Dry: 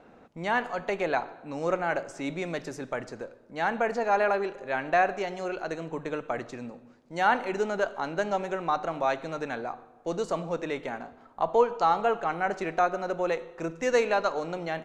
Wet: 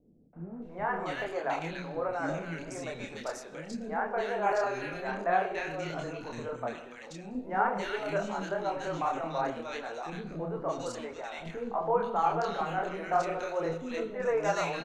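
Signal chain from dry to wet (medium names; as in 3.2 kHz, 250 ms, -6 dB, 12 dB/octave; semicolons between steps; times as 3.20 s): transient shaper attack 0 dB, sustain +6 dB; chorus voices 2, 1.2 Hz, delay 28 ms, depth 3.7 ms; three bands offset in time lows, mids, highs 330/620 ms, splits 360/1800 Hz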